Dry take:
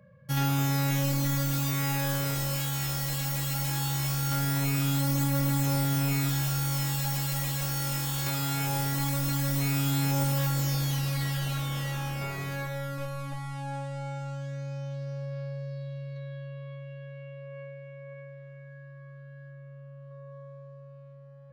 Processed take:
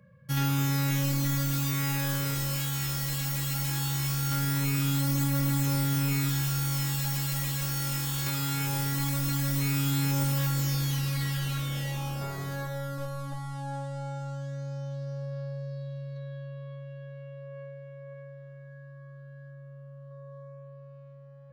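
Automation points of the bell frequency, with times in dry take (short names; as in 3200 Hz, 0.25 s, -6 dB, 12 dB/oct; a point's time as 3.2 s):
bell -13.5 dB 0.39 oct
11.54 s 680 Hz
12.24 s 2400 Hz
20.4 s 2400 Hz
20.92 s 11000 Hz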